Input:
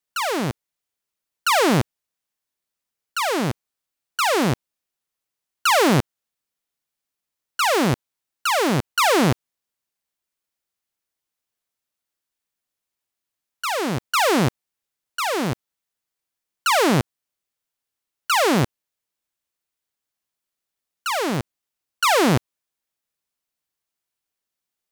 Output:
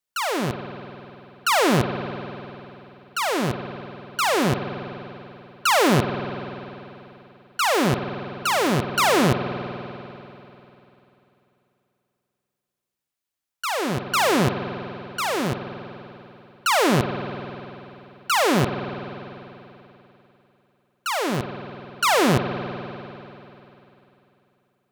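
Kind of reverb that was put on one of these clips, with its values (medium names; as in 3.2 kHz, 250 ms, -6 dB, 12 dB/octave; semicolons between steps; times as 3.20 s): spring tank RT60 3.2 s, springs 49 ms, chirp 30 ms, DRR 7 dB; trim -1.5 dB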